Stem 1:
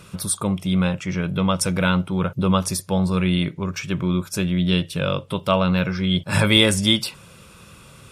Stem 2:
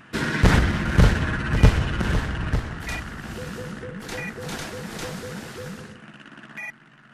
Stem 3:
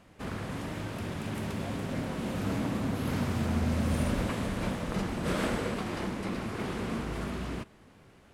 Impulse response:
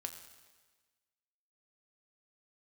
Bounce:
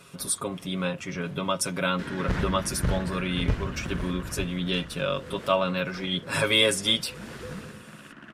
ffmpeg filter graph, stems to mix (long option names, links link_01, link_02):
-filter_complex "[0:a]highpass=210,aecho=1:1:7.3:0.77,volume=-6dB,asplit=2[link_01][link_02];[1:a]highshelf=frequency=4900:gain=-8,adelay=1850,volume=-2.5dB,afade=type=in:start_time=7.11:duration=0.2:silence=0.375837[link_03];[2:a]acrossover=split=550[link_04][link_05];[link_04]aeval=exprs='val(0)*(1-0.5/2+0.5/2*cos(2*PI*4.3*n/s))':channel_layout=same[link_06];[link_05]aeval=exprs='val(0)*(1-0.5/2-0.5/2*cos(2*PI*4.3*n/s))':channel_layout=same[link_07];[link_06][link_07]amix=inputs=2:normalize=0,volume=-3.5dB[link_08];[link_02]apad=whole_len=367647[link_09];[link_08][link_09]sidechaincompress=threshold=-35dB:ratio=3:attack=16:release=762[link_10];[link_01][link_03][link_10]amix=inputs=3:normalize=0,equalizer=frequency=800:width_type=o:width=0.21:gain=-5"